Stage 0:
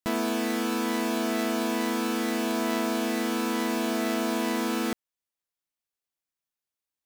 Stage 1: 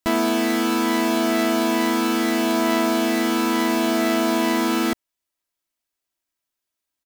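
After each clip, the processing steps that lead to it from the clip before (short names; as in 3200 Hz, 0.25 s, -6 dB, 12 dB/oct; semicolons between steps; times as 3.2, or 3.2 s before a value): comb 3.1 ms, depth 43%; gain +6 dB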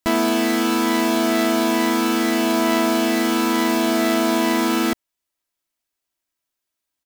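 short-mantissa float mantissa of 2-bit; gain +1.5 dB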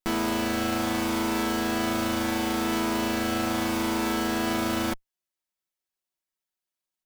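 minimum comb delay 5.4 ms; gain -6.5 dB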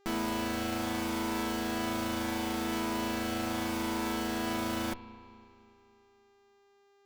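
spring tank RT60 2.7 s, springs 32/36 ms, chirp 25 ms, DRR 12.5 dB; buzz 400 Hz, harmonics 19, -59 dBFS -7 dB/oct; gain -6.5 dB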